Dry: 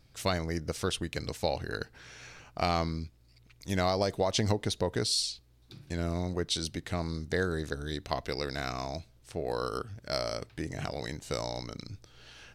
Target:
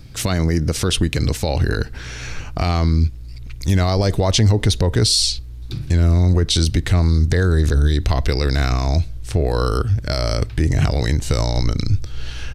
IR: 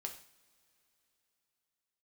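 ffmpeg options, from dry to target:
-filter_complex "[0:a]asubboost=boost=4.5:cutoff=79,aresample=32000,aresample=44100,equalizer=f=640:t=o:w=1.4:g=-3,acrossover=split=370[s0][s1];[s0]acontrast=68[s2];[s2][s1]amix=inputs=2:normalize=0,alimiter=level_in=12.6:limit=0.891:release=50:level=0:latency=1,volume=0.501"

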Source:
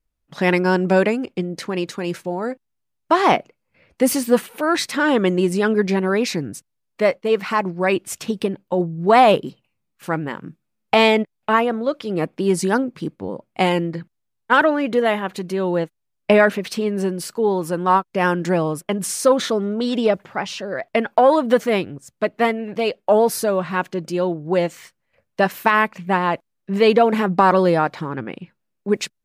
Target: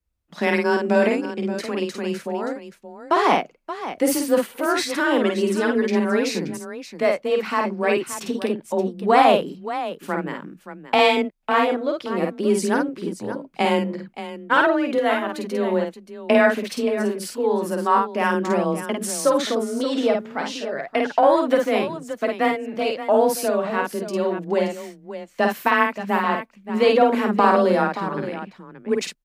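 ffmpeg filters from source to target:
-filter_complex "[0:a]afreqshift=23,asplit=2[s0][s1];[s1]aecho=0:1:51|576:0.668|0.266[s2];[s0][s2]amix=inputs=2:normalize=0,volume=0.668"

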